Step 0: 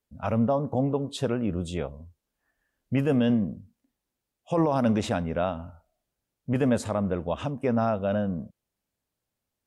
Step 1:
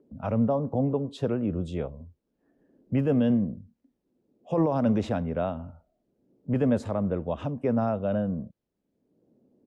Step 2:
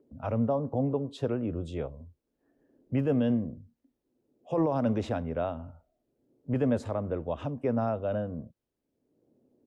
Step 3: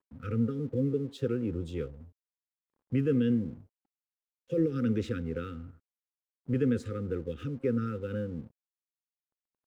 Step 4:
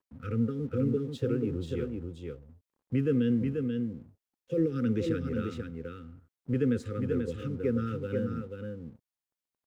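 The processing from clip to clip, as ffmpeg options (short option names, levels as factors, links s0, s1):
-filter_complex "[0:a]firequalizer=gain_entry='entry(450,0);entry(780,-3);entry(1300,-5);entry(2600,-7);entry(5200,-9);entry(8700,-15)':delay=0.05:min_phase=1,acrossover=split=200|430|2100[s0][s1][s2][s3];[s1]acompressor=mode=upward:threshold=0.0126:ratio=2.5[s4];[s0][s4][s2][s3]amix=inputs=4:normalize=0"
-af "equalizer=f=190:w=7.1:g=-14.5,volume=0.794"
-af "afftfilt=real='re*(1-between(b*sr/4096,530,1200))':imag='im*(1-between(b*sr/4096,530,1200))':win_size=4096:overlap=0.75,aeval=exprs='sgn(val(0))*max(abs(val(0))-0.00112,0)':c=same"
-af "aecho=1:1:486:0.562"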